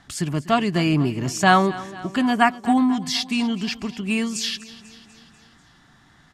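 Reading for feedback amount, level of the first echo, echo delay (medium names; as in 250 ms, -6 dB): 60%, -18.0 dB, 246 ms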